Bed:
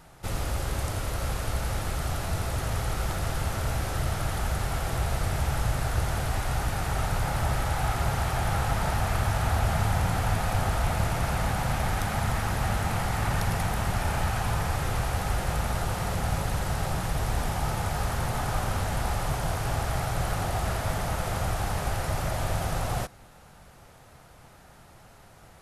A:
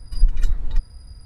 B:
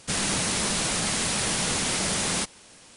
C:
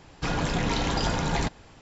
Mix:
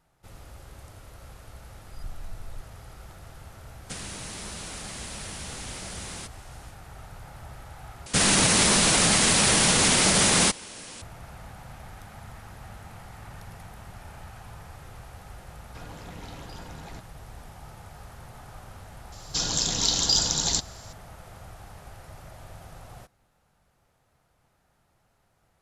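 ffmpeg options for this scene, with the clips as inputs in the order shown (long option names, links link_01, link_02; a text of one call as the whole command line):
ffmpeg -i bed.wav -i cue0.wav -i cue1.wav -i cue2.wav -filter_complex "[2:a]asplit=2[link_01][link_02];[3:a]asplit=2[link_03][link_04];[0:a]volume=-16.5dB[link_05];[1:a]asoftclip=type=tanh:threshold=-16dB[link_06];[link_01]acompressor=threshold=-39dB:ratio=4:attack=72:release=142:knee=1:detection=peak[link_07];[link_02]alimiter=level_in=19dB:limit=-1dB:release=50:level=0:latency=1[link_08];[link_04]aexciter=amount=9.1:drive=7.4:freq=3500[link_09];[link_05]asplit=2[link_10][link_11];[link_10]atrim=end=8.064[link_12];[link_08]atrim=end=2.96,asetpts=PTS-STARTPTS,volume=-10dB[link_13];[link_11]atrim=start=11.016[link_14];[link_06]atrim=end=1.25,asetpts=PTS-STARTPTS,volume=-14.5dB,afade=type=in:duration=0.004:curve=hsin,afade=type=out:start_time=1.246:duration=0.004:curve=hsin,adelay=1810[link_15];[link_07]atrim=end=2.96,asetpts=PTS-STARTPTS,volume=-3.5dB,afade=type=in:duration=0.1,afade=type=out:start_time=2.86:duration=0.1,adelay=3820[link_16];[link_03]atrim=end=1.81,asetpts=PTS-STARTPTS,volume=-17.5dB,afade=type=in:duration=0.004:curve=hsin,afade=type=out:start_time=1.806:duration=0.004:curve=hsin,adelay=15520[link_17];[link_09]atrim=end=1.81,asetpts=PTS-STARTPTS,volume=-7.5dB,afade=type=in:duration=0.004:curve=hsin,afade=type=out:start_time=1.806:duration=0.004:curve=hsin,adelay=19120[link_18];[link_12][link_13]acrossfade=duration=0.004:curve1=hsin:curve2=hsin[link_19];[link_19][link_14]acrossfade=duration=0.004:curve1=hsin:curve2=hsin[link_20];[link_20][link_15][link_16][link_17][link_18]amix=inputs=5:normalize=0" out.wav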